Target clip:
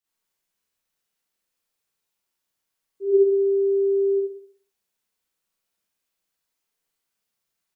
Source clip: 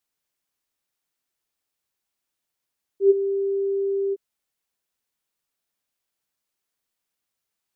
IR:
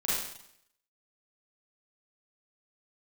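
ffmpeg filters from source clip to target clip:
-filter_complex "[0:a]aecho=1:1:66|132|198|264|330:0.251|0.128|0.0653|0.0333|0.017[link_01];[1:a]atrim=start_sample=2205,afade=type=out:start_time=0.3:duration=0.01,atrim=end_sample=13671[link_02];[link_01][link_02]afir=irnorm=-1:irlink=0,volume=-7dB"

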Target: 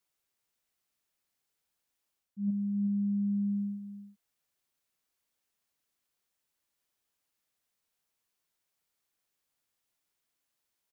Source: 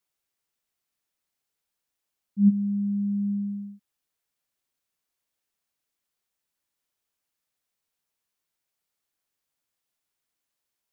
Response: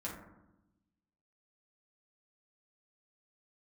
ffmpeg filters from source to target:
-af "areverse,acompressor=threshold=-31dB:ratio=5,areverse,aecho=1:1:366:0.316"

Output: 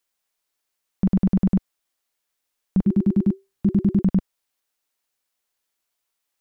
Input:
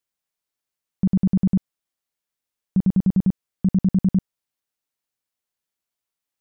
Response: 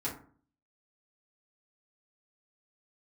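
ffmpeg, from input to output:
-filter_complex "[0:a]equalizer=frequency=130:width_type=o:width=1.6:gain=-10.5,asplit=3[link_01][link_02][link_03];[link_01]afade=type=out:start_time=2.85:duration=0.02[link_04];[link_02]afreqshift=-390,afade=type=in:start_time=2.85:duration=0.02,afade=type=out:start_time=4.01:duration=0.02[link_05];[link_03]afade=type=in:start_time=4.01:duration=0.02[link_06];[link_04][link_05][link_06]amix=inputs=3:normalize=0,volume=7dB"

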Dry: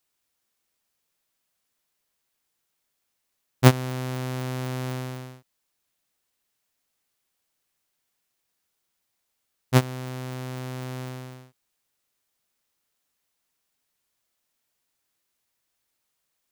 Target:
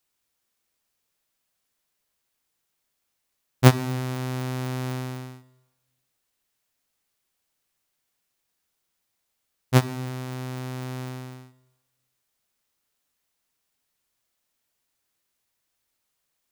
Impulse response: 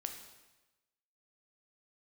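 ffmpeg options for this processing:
-filter_complex "[0:a]asplit=2[link_01][link_02];[1:a]atrim=start_sample=2205,lowshelf=frequency=140:gain=7[link_03];[link_02][link_03]afir=irnorm=-1:irlink=0,volume=-5.5dB[link_04];[link_01][link_04]amix=inputs=2:normalize=0,volume=-3dB"

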